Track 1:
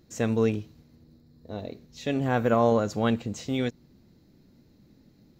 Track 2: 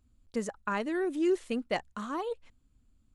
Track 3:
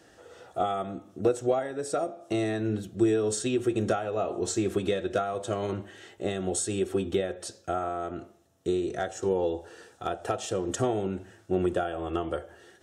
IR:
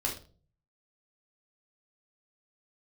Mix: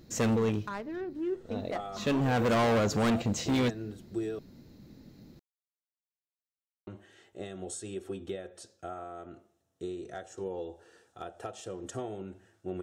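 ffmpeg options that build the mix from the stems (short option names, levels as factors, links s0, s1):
-filter_complex "[0:a]volume=0.944[s0];[1:a]equalizer=f=5300:t=o:w=0.97:g=-13.5,adynamicsmooth=sensitivity=5:basefreq=880,volume=0.251,asplit=3[s1][s2][s3];[s2]volume=0.0944[s4];[2:a]adelay=1150,volume=0.158,asplit=3[s5][s6][s7];[s5]atrim=end=4.39,asetpts=PTS-STARTPTS,afade=t=out:st=4.386:d=0.004:c=hsin[s8];[s6]atrim=start=4.39:end=6.87,asetpts=PTS-STARTPTS,volume=0[s9];[s7]atrim=start=6.87,asetpts=PTS-STARTPTS,afade=t=in:d=0.004:c=hsin[s10];[s8][s9][s10]concat=n=3:v=0:a=1[s11];[s3]apad=whole_len=237805[s12];[s0][s12]sidechaincompress=threshold=0.00562:ratio=10:attack=6.3:release=634[s13];[3:a]atrim=start_sample=2205[s14];[s4][s14]afir=irnorm=-1:irlink=0[s15];[s13][s1][s11][s15]amix=inputs=4:normalize=0,acontrast=37,volume=15,asoftclip=hard,volume=0.0668"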